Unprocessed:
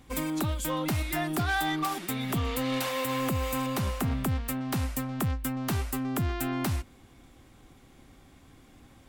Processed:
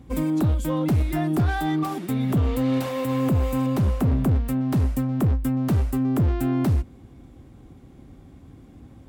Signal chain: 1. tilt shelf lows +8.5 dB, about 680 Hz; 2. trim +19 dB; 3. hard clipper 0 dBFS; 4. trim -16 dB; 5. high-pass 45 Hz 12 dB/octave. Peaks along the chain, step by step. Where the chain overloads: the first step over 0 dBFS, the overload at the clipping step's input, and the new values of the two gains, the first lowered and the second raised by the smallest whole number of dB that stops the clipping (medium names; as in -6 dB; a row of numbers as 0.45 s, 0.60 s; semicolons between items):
-14.5 dBFS, +4.5 dBFS, 0.0 dBFS, -16.0 dBFS, -11.5 dBFS; step 2, 4.5 dB; step 2 +14 dB, step 4 -11 dB